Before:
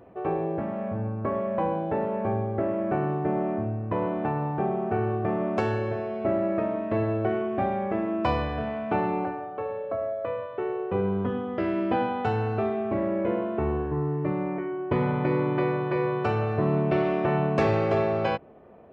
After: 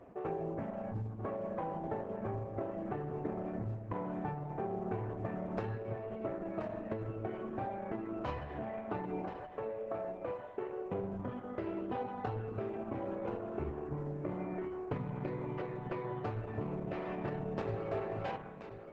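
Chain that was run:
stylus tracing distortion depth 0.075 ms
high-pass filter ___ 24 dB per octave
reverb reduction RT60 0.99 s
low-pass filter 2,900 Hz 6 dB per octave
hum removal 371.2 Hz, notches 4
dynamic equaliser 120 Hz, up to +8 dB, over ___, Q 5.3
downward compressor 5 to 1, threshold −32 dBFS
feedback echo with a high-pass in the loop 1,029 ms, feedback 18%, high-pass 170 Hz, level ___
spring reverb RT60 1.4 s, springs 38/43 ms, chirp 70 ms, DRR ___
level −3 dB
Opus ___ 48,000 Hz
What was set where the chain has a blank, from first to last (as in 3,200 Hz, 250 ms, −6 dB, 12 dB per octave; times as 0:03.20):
45 Hz, −50 dBFS, −9 dB, 10 dB, 10 kbit/s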